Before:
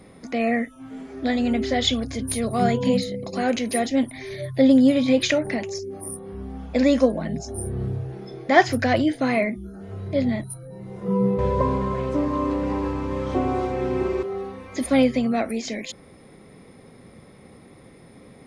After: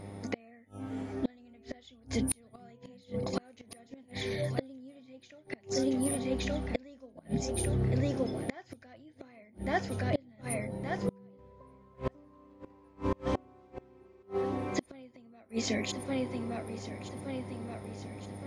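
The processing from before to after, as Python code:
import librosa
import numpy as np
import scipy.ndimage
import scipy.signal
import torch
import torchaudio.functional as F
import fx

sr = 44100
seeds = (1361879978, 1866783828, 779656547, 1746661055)

y = fx.echo_feedback(x, sr, ms=1171, feedback_pct=52, wet_db=-14)
y = fx.dmg_buzz(y, sr, base_hz=100.0, harmonics=9, level_db=-43.0, tilt_db=-5, odd_only=False)
y = fx.gate_flip(y, sr, shuts_db=-16.0, range_db=-32)
y = y * librosa.db_to_amplitude(-2.0)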